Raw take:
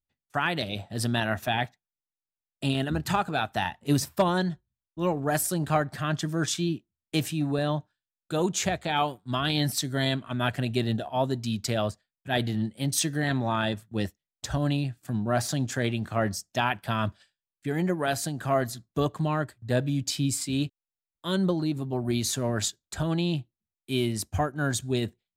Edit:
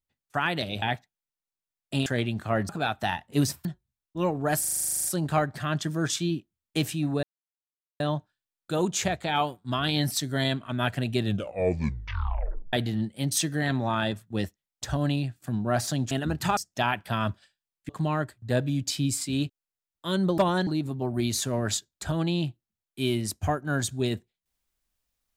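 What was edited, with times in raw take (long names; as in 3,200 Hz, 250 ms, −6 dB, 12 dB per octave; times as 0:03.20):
0:00.82–0:01.52: remove
0:02.76–0:03.22: swap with 0:15.72–0:16.35
0:04.18–0:04.47: move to 0:21.58
0:05.42: stutter 0.04 s, 12 plays
0:07.61: splice in silence 0.77 s
0:10.81: tape stop 1.53 s
0:17.67–0:19.09: remove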